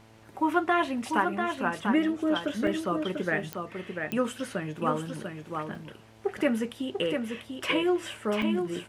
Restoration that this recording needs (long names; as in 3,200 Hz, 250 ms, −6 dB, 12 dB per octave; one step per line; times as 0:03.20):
click removal
hum removal 110.7 Hz, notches 9
repair the gap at 0:02.67/0:05.75/0:08.42, 3.5 ms
echo removal 693 ms −5.5 dB